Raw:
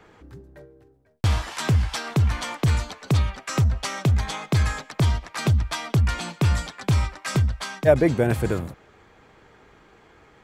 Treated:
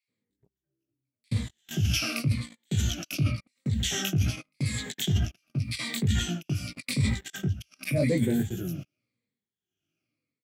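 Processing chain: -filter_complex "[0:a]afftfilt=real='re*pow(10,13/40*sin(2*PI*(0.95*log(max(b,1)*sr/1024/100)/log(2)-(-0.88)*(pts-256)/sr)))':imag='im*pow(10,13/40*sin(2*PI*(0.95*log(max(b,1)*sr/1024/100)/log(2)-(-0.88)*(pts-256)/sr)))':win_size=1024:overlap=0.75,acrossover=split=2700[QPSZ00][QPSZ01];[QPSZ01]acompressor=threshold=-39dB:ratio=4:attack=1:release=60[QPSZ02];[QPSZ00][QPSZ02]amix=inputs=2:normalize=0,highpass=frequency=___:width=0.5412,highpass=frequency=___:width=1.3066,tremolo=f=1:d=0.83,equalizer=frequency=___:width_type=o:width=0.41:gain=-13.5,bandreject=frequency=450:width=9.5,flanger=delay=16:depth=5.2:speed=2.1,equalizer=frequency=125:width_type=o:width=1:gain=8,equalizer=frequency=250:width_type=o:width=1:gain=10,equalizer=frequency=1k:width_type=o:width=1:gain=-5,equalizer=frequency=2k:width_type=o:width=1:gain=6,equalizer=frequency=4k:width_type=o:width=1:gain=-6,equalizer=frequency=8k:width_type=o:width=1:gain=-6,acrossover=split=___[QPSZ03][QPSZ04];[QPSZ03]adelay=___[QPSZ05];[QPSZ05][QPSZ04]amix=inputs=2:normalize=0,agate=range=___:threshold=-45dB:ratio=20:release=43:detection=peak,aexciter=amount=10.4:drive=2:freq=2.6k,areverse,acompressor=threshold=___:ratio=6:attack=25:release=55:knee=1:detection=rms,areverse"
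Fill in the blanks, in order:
76, 76, 930, 1900, 80, -33dB, -24dB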